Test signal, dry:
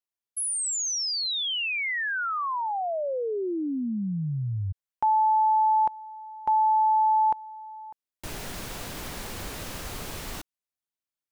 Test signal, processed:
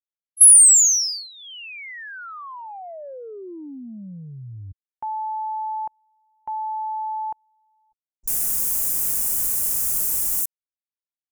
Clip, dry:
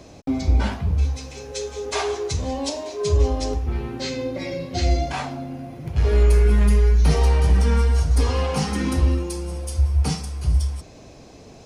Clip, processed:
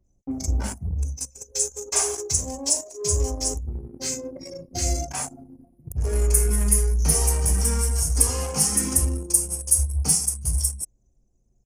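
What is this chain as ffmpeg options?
-filter_complex "[0:a]acrossover=split=5800[a][b];[b]adelay=40[c];[a][c]amix=inputs=2:normalize=0,aexciter=amount=11.6:drive=8.8:freq=5.9k,anlmdn=631,volume=-6dB"

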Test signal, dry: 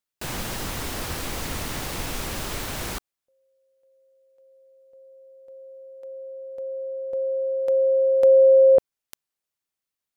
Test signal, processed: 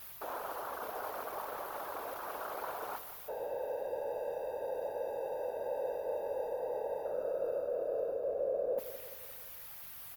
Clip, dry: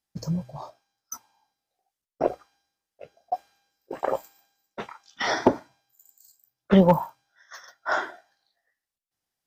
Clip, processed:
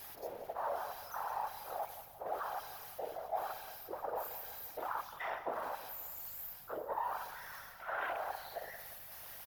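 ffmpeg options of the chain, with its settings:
-filter_complex "[0:a]aeval=exprs='val(0)+0.5*0.0708*sgn(val(0))':c=same,aemphasis=mode=reproduction:type=75fm,afwtdn=0.0562,highpass=f=530:w=0.5412,highpass=f=530:w=1.3066,highshelf=f=12k:g=7.5,areverse,acompressor=threshold=-29dB:ratio=16:attack=1.5:release=551:knee=6:detection=peak,areverse,aeval=exprs='val(0)+0.000708*(sin(2*PI*50*n/s)+sin(2*PI*2*50*n/s)/2+sin(2*PI*3*50*n/s)/3+sin(2*PI*4*50*n/s)/4+sin(2*PI*5*50*n/s)/5)':c=same,afftfilt=real='hypot(re,im)*cos(2*PI*random(0))':imag='hypot(re,im)*sin(2*PI*random(1))':win_size=512:overlap=0.75,aexciter=amount=8.7:drive=5.7:freq=11k,asplit=2[a][b];[b]aecho=0:1:175|350|525|700|875:0.224|0.116|0.0605|0.0315|0.0164[c];[a][c]amix=inputs=2:normalize=0,volume=2.5dB"

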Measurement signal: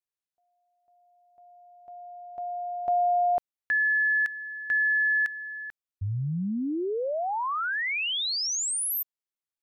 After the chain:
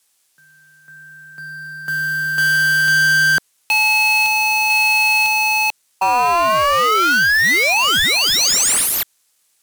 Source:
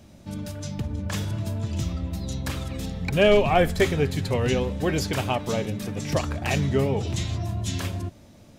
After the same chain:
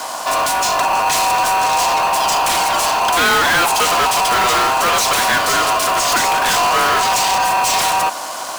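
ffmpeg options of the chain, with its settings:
-filter_complex "[0:a]equalizer=f=9.5k:w=0.51:g=14.5,aeval=exprs='val(0)*sin(2*PI*860*n/s)':c=same,asplit=2[a][b];[b]highpass=f=720:p=1,volume=36dB,asoftclip=type=tanh:threshold=-7dB[c];[a][c]amix=inputs=2:normalize=0,lowpass=f=6k:p=1,volume=-6dB,acrossover=split=630|1100[d][e][f];[f]acrusher=bits=2:mode=log:mix=0:aa=0.000001[g];[d][e][g]amix=inputs=3:normalize=0,volume=-1dB"

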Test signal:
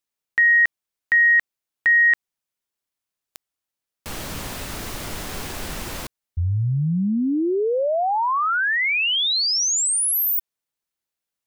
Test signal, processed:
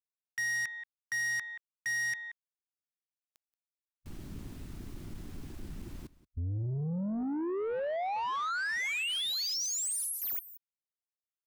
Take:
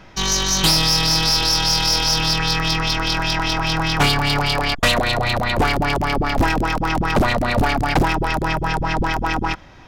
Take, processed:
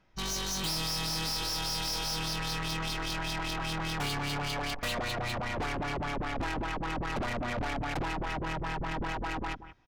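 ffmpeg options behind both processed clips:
-af "afwtdn=0.0501,aecho=1:1:179:0.106,asoftclip=type=tanh:threshold=-23.5dB,volume=-7.5dB"

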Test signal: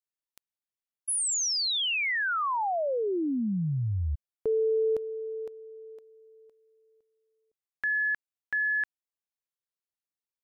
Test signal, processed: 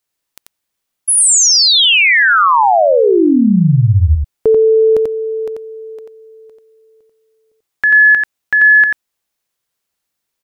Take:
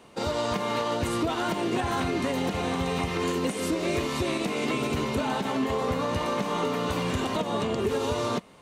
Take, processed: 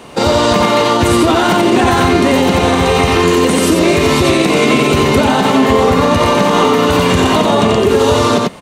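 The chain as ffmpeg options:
-af "aecho=1:1:89:0.668,alimiter=level_in=18dB:limit=-1dB:release=50:level=0:latency=1,volume=-1dB"

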